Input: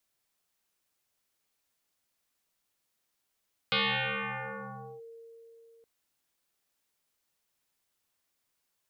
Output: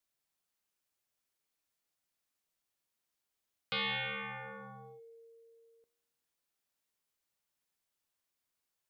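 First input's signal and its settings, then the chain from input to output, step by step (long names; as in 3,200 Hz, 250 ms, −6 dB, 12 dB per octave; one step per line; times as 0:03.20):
two-operator FM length 2.12 s, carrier 459 Hz, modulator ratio 0.72, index 11, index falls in 1.29 s linear, decay 3.74 s, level −23.5 dB
tuned comb filter 78 Hz, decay 1.1 s, harmonics all, mix 60%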